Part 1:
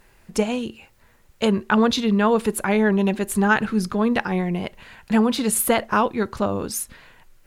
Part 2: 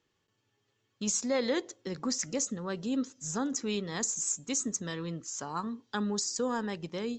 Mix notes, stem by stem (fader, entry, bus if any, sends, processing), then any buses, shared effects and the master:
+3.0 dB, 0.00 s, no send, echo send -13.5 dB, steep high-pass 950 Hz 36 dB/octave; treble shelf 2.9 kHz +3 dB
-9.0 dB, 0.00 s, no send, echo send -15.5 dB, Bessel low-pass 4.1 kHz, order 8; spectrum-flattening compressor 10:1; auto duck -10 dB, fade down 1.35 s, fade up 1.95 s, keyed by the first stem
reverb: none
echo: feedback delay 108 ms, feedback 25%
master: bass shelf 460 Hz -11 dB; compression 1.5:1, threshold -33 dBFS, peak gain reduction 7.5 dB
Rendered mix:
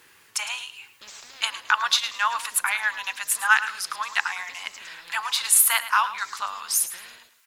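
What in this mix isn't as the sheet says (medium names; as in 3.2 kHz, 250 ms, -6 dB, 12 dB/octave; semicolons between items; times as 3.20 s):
stem 2 -9.0 dB -> +2.0 dB; master: missing compression 1.5:1, threshold -33 dBFS, peak gain reduction 7.5 dB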